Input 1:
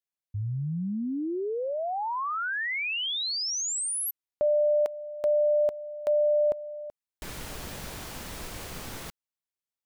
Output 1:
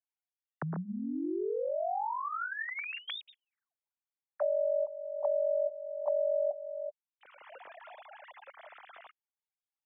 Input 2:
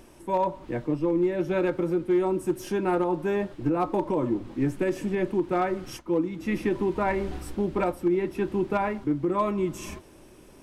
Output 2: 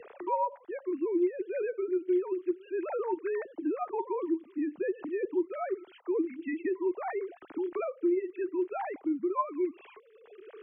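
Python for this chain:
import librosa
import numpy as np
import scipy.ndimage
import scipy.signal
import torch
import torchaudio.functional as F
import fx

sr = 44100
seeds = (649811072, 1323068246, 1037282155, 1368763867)

y = fx.sine_speech(x, sr)
y = fx.band_squash(y, sr, depth_pct=70)
y = y * librosa.db_to_amplitude(-5.5)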